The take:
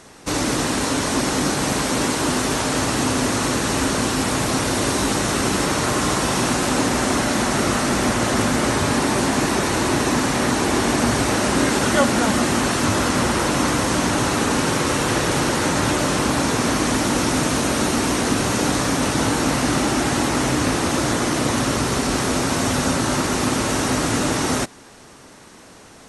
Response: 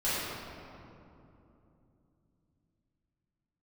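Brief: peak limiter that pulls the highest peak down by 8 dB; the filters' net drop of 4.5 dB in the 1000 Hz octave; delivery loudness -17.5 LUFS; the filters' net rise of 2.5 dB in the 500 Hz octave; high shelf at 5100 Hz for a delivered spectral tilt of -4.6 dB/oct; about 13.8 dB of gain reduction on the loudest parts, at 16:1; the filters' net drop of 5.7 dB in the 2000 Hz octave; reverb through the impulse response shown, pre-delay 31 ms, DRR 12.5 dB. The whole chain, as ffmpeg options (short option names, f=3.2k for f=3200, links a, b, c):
-filter_complex "[0:a]equalizer=f=500:t=o:g=5,equalizer=f=1k:t=o:g=-6,equalizer=f=2k:t=o:g=-5,highshelf=f=5.1k:g=-4.5,acompressor=threshold=-27dB:ratio=16,alimiter=level_in=1dB:limit=-24dB:level=0:latency=1,volume=-1dB,asplit=2[a][b];[1:a]atrim=start_sample=2205,adelay=31[c];[b][c]afir=irnorm=-1:irlink=0,volume=-23dB[d];[a][d]amix=inputs=2:normalize=0,volume=16dB"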